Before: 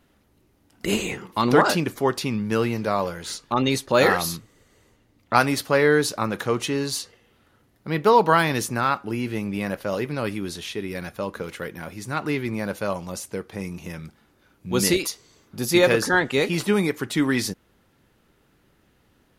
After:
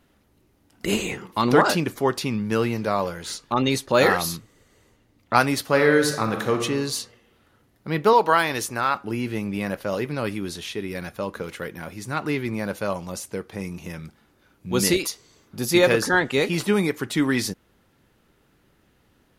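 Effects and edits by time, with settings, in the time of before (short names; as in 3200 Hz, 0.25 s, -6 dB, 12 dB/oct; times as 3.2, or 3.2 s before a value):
5.64–6.62 reverb throw, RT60 0.96 s, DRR 5 dB
8.13–8.95 bell 170 Hz -10 dB 1.4 oct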